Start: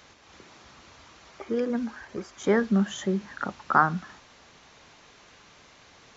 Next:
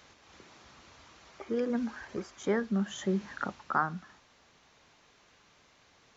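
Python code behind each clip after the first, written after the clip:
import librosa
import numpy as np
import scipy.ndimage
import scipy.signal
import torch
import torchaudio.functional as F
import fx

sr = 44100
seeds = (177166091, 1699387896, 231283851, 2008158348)

y = fx.rider(x, sr, range_db=4, speed_s=0.5)
y = F.gain(torch.from_numpy(y), -5.0).numpy()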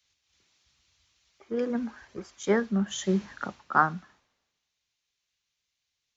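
y = fx.band_widen(x, sr, depth_pct=100)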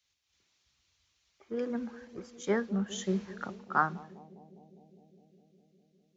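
y = fx.echo_bbd(x, sr, ms=203, stages=1024, feedback_pct=80, wet_db=-17.0)
y = F.gain(torch.from_numpy(y), -5.0).numpy()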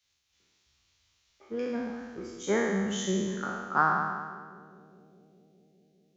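y = fx.spec_trails(x, sr, decay_s=1.5)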